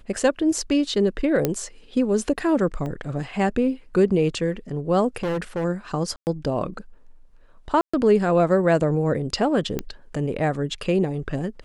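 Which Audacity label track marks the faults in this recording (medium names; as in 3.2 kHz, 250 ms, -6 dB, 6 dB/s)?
1.450000	1.450000	pop -7 dBFS
2.860000	2.860000	dropout 2.1 ms
5.230000	5.650000	clipped -22 dBFS
6.160000	6.270000	dropout 109 ms
7.810000	7.930000	dropout 125 ms
9.790000	9.790000	pop -12 dBFS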